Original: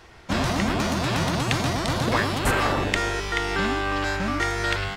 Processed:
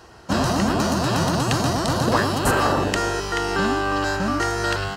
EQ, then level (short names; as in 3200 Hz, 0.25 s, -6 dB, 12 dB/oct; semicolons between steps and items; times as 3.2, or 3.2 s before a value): HPF 87 Hz 6 dB/oct; bell 2200 Hz -14.5 dB 0.39 oct; notch 3500 Hz, Q 6.8; +4.5 dB